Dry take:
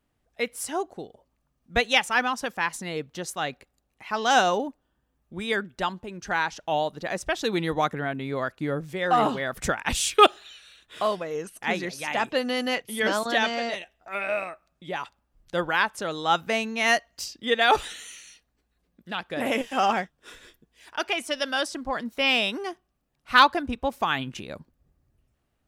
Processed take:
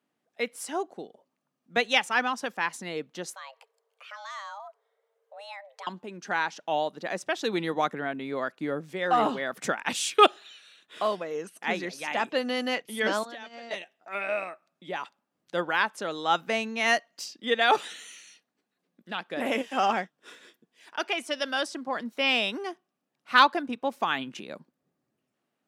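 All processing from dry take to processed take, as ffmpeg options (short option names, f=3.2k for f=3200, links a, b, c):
-filter_complex "[0:a]asettb=1/sr,asplit=3[a][b][c];[a]atrim=end=3.344[d];[b]atrim=start=3.34:end=5.87,asetpts=PTS-STARTPTS,afade=t=in:d=0.004:c=qsin,afade=t=out:st=2.526:d=0.004:c=qsin,acompressor=threshold=-43dB:ratio=2.5:attack=3.2:release=140:knee=1:detection=peak,afreqshift=400[e];[c]atrim=start=5.866[f];[d][e]acrossfade=d=0.004:c1=hsin:c2=qsin[g];[g][f]acrossfade=d=0.004:c1=qsin:c2=hsin,asettb=1/sr,asplit=3[h][i][j];[h]atrim=end=13.254[k];[i]atrim=start=13.25:end=13.71,asetpts=PTS-STARTPTS,afade=t=in:d=0.004:c=qsin,afade=t=out:st=0.456:d=0.004:c=qsin,agate=range=-12dB:threshold=-26dB:ratio=16:release=100:detection=peak,acompressor=threshold=-35dB:ratio=16:attack=3.2:release=140:knee=1:detection=peak[l];[j]atrim=start=13.706[m];[k][l]acrossfade=d=0.004:c1=hsin:c2=qsin[n];[n][m]acrossfade=d=0.004:c1=qsin:c2=hsin,highpass=f=180:w=0.5412,highpass=f=180:w=1.3066,highshelf=f=10k:g=-7.5,volume=-2dB"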